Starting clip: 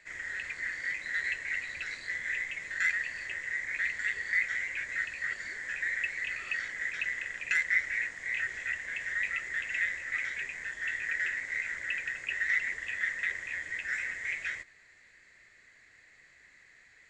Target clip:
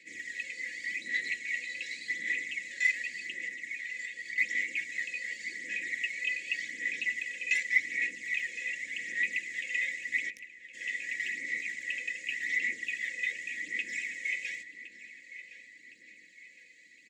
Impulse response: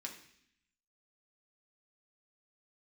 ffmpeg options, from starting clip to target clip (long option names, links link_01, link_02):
-filter_complex "[0:a]highpass=frequency=150:width=0.5412,highpass=frequency=150:width=1.3066,aecho=1:1:3.6:0.71,asettb=1/sr,asplit=3[link_01][link_02][link_03];[link_01]atrim=end=3.194[link_04];[link_02]atrim=start=3.19:end=4.38,asetpts=PTS-STARTPTS,afade=type=in:duration=0.004:curve=qsin,afade=type=out:start_time=1.186:duration=0.004:curve=qsin,acompressor=threshold=-34dB:ratio=6[link_05];[link_03]atrim=start=4.376[link_06];[link_04][link_05]acrossfade=duration=0.004:curve1=hsin:curve2=qsin[link_07];[link_07][link_06]acrossfade=duration=0.004:curve1=qsin:curve2=hsin,aphaser=in_gain=1:out_gain=1:delay=2:decay=0.49:speed=0.87:type=sinusoidal,asplit=3[link_08][link_09][link_10];[link_08]afade=type=out:start_time=10.29:duration=0.02[link_11];[link_09]acrusher=bits=2:mix=0:aa=0.5,afade=type=in:start_time=10.29:duration=0.02,afade=type=out:start_time=10.73:duration=0.02[link_12];[link_10]afade=type=in:start_time=10.73:duration=0.02[link_13];[link_11][link_12][link_13]amix=inputs=3:normalize=0,asuperstop=centerf=1000:order=12:qfactor=0.66,asplit=2[link_14][link_15];[link_15]adelay=1063,lowpass=frequency=3800:poles=1,volume=-13dB,asplit=2[link_16][link_17];[link_17]adelay=1063,lowpass=frequency=3800:poles=1,volume=0.5,asplit=2[link_18][link_19];[link_19]adelay=1063,lowpass=frequency=3800:poles=1,volume=0.5,asplit=2[link_20][link_21];[link_21]adelay=1063,lowpass=frequency=3800:poles=1,volume=0.5,asplit=2[link_22][link_23];[link_23]adelay=1063,lowpass=frequency=3800:poles=1,volume=0.5[link_24];[link_14][link_16][link_18][link_20][link_22][link_24]amix=inputs=6:normalize=0"